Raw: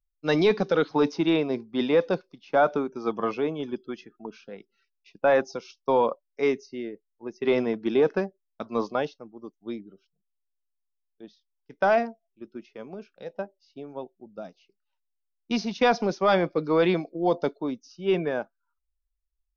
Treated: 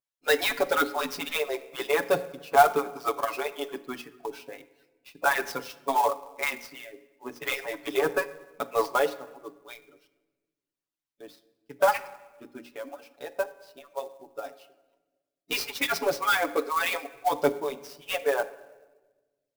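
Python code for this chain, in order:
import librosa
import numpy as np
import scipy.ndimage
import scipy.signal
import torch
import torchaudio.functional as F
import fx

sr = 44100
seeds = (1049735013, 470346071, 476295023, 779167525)

p1 = fx.hpss_only(x, sr, part='percussive')
p2 = fx.low_shelf(p1, sr, hz=280.0, db=-11.0)
p3 = fx.hum_notches(p2, sr, base_hz=60, count=9)
p4 = p3 + 0.9 * np.pad(p3, (int(7.1 * sr / 1000.0), 0))[:len(p3)]
p5 = np.clip(p4, -10.0 ** (-24.0 / 20.0), 10.0 ** (-24.0 / 20.0))
p6 = p4 + (p5 * 10.0 ** (-5.0 / 20.0))
p7 = fx.room_shoebox(p6, sr, seeds[0], volume_m3=860.0, walls='mixed', distance_m=0.32)
y = fx.clock_jitter(p7, sr, seeds[1], jitter_ms=0.023)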